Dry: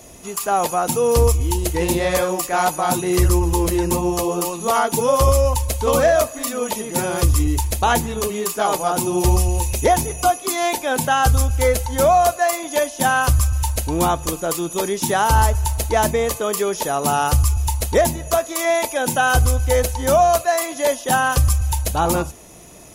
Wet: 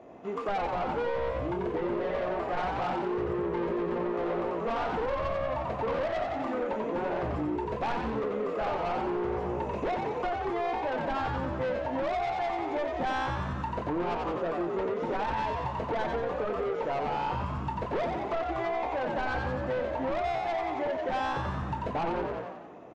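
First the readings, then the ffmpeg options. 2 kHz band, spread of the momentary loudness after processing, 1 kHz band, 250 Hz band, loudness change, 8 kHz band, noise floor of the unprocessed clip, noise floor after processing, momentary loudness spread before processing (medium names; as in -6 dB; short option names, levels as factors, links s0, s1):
-12.5 dB, 2 LU, -11.0 dB, -9.5 dB, -12.5 dB, under -35 dB, -35 dBFS, -36 dBFS, 6 LU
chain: -filter_complex "[0:a]asplit=2[s0][s1];[s1]acrusher=bits=4:mix=0:aa=0.000001,volume=0.473[s2];[s0][s2]amix=inputs=2:normalize=0,highpass=320,asoftclip=type=hard:threshold=0.211,lowpass=1500,aemphasis=mode=reproduction:type=bsi,asplit=2[s3][s4];[s4]adelay=23,volume=0.422[s5];[s3][s5]amix=inputs=2:normalize=0,asoftclip=type=tanh:threshold=0.112,asplit=8[s6][s7][s8][s9][s10][s11][s12][s13];[s7]adelay=90,afreqshift=60,volume=0.631[s14];[s8]adelay=180,afreqshift=120,volume=0.335[s15];[s9]adelay=270,afreqshift=180,volume=0.178[s16];[s10]adelay=360,afreqshift=240,volume=0.0944[s17];[s11]adelay=450,afreqshift=300,volume=0.0495[s18];[s12]adelay=540,afreqshift=360,volume=0.0263[s19];[s13]adelay=630,afreqshift=420,volume=0.014[s20];[s6][s14][s15][s16][s17][s18][s19][s20]amix=inputs=8:normalize=0,acompressor=threshold=0.0631:ratio=4,volume=0.596"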